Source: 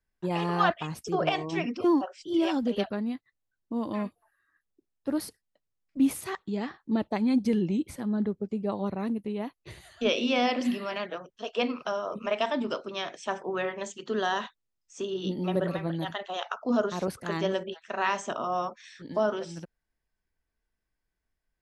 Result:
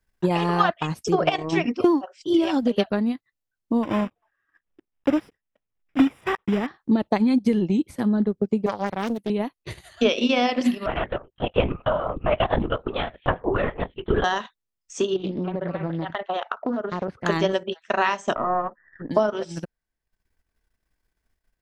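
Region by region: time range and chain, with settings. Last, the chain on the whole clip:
3.83–6.68 s: block-companded coder 3-bit + Savitzky-Golay filter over 25 samples
8.66–9.30 s: tilt EQ +2 dB/octave + loudspeaker Doppler distortion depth 0.53 ms
10.86–14.24 s: low-pass 2.1 kHz 6 dB/octave + LPC vocoder at 8 kHz whisper
15.16–17.26 s: low-pass 2.3 kHz + compression 12:1, threshold -31 dBFS + loudspeaker Doppler distortion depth 0.18 ms
18.35–19.11 s: partial rectifier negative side -3 dB + brick-wall FIR low-pass 2 kHz
whole clip: compression 2.5:1, threshold -27 dBFS; transient shaper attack +4 dB, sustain -10 dB; trim +8 dB

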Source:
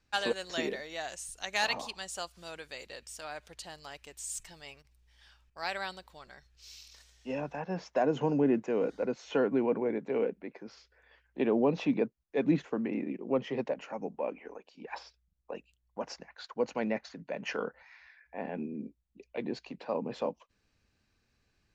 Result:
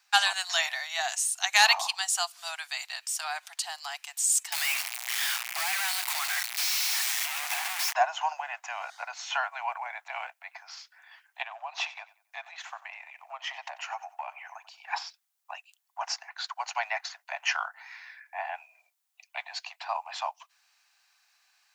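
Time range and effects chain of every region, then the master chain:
4.52–7.93 s: one-bit comparator + peaking EQ 2.2 kHz +7.5 dB 0.64 oct + three bands compressed up and down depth 40%
11.42–14.88 s: compression 4:1, threshold -34 dBFS + feedback delay 92 ms, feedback 30%, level -18 dB
whole clip: steep high-pass 690 Hz 96 dB/octave; treble shelf 6 kHz +8.5 dB; trim +9 dB

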